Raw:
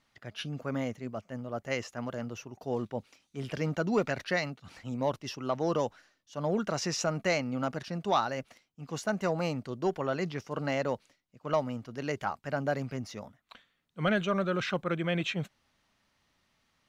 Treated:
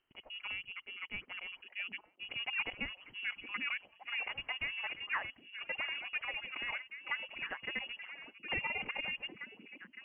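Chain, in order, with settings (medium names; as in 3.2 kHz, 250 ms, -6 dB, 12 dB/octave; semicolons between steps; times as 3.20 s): gliding tape speed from 148% -> 188%; frequency inversion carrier 3.1 kHz; repeats whose band climbs or falls 766 ms, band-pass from 270 Hz, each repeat 1.4 oct, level -3 dB; trim -8.5 dB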